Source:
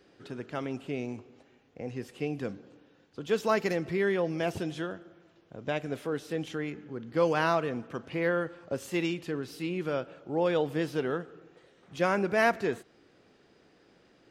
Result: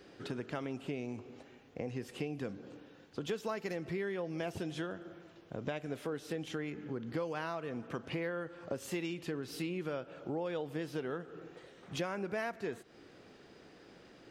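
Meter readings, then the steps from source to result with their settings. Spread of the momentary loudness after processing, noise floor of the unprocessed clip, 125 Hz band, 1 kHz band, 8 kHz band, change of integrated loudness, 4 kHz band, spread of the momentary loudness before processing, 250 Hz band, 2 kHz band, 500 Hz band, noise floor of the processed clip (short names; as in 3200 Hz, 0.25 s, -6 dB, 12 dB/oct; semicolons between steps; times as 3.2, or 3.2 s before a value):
17 LU, -63 dBFS, -5.5 dB, -11.0 dB, -4.0 dB, -8.5 dB, -5.5 dB, 14 LU, -6.5 dB, -9.5 dB, -9.0 dB, -59 dBFS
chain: compressor 6:1, threshold -40 dBFS, peak gain reduction 19 dB; gain +4.5 dB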